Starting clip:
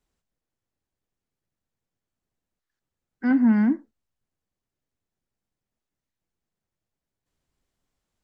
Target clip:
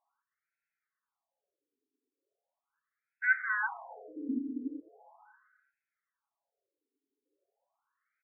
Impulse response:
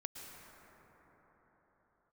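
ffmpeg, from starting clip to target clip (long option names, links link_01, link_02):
-filter_complex "[0:a]aecho=1:1:7.2:0.4,asplit=2[link_01][link_02];[1:a]atrim=start_sample=2205[link_03];[link_02][link_03]afir=irnorm=-1:irlink=0,volume=-5dB[link_04];[link_01][link_04]amix=inputs=2:normalize=0,afftfilt=real='re*between(b*sr/1024,330*pow(1900/330,0.5+0.5*sin(2*PI*0.39*pts/sr))/1.41,330*pow(1900/330,0.5+0.5*sin(2*PI*0.39*pts/sr))*1.41)':imag='im*between(b*sr/1024,330*pow(1900/330,0.5+0.5*sin(2*PI*0.39*pts/sr))/1.41,330*pow(1900/330,0.5+0.5*sin(2*PI*0.39*pts/sr))*1.41)':win_size=1024:overlap=0.75,volume=4.5dB"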